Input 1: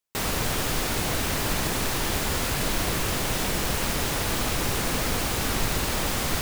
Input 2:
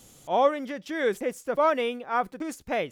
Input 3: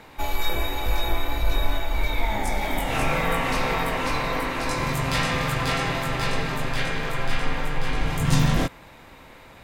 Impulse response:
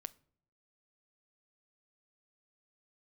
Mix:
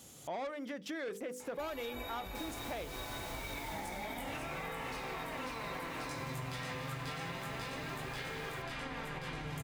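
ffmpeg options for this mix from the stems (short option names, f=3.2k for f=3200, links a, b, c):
-filter_complex "[0:a]adelay=2200,volume=-12.5dB,afade=t=out:st=3.8:d=0.25:silence=0.421697[a];[1:a]bandreject=f=50:t=h:w=6,bandreject=f=100:t=h:w=6,bandreject=f=150:t=h:w=6,bandreject=f=200:t=h:w=6,bandreject=f=250:t=h:w=6,bandreject=f=300:t=h:w=6,bandreject=f=350:t=h:w=6,bandreject=f=400:t=h:w=6,bandreject=f=450:t=h:w=6,bandreject=f=500:t=h:w=6,dynaudnorm=f=160:g=3:m=3.5dB,asoftclip=type=tanh:threshold=-20.5dB,volume=-3.5dB,asplit=2[b][c];[c]volume=-8dB[d];[2:a]alimiter=limit=-15.5dB:level=0:latency=1:release=174,flanger=delay=2.3:depth=5.7:regen=55:speed=0.29:shape=sinusoidal,adelay=1400,volume=-1.5dB,asplit=2[e][f];[f]volume=-4.5dB[g];[3:a]atrim=start_sample=2205[h];[d][g]amix=inputs=2:normalize=0[i];[i][h]afir=irnorm=-1:irlink=0[j];[a][b][e][j]amix=inputs=4:normalize=0,highpass=63,acompressor=threshold=-39dB:ratio=6"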